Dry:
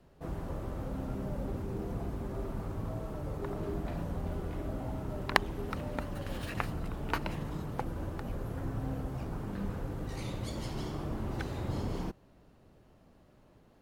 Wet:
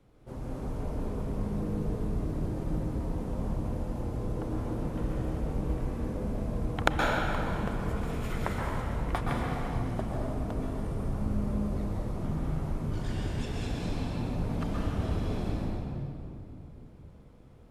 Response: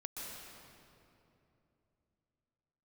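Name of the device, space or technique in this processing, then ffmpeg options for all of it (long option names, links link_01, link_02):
slowed and reverbed: -filter_complex "[0:a]asetrate=34398,aresample=44100[link_01];[1:a]atrim=start_sample=2205[link_02];[link_01][link_02]afir=irnorm=-1:irlink=0,volume=4.5dB"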